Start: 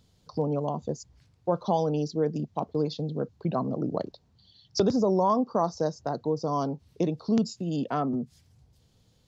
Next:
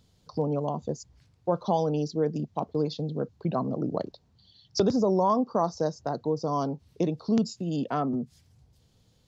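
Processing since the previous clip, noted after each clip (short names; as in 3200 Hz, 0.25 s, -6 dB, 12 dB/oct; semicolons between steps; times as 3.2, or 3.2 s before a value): nothing audible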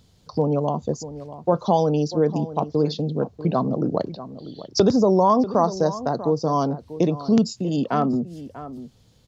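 outdoor echo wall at 110 m, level -14 dB; gain +6.5 dB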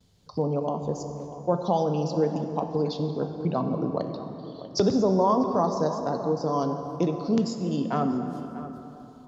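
gate with hold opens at -48 dBFS; plate-style reverb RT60 3.4 s, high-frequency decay 0.55×, DRR 6 dB; gain -5.5 dB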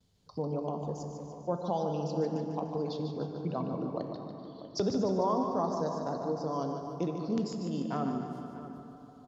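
feedback echo 0.148 s, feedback 55%, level -7.5 dB; gain -8 dB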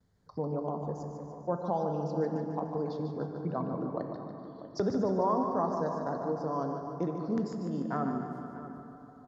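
resonant high shelf 2200 Hz -7 dB, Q 3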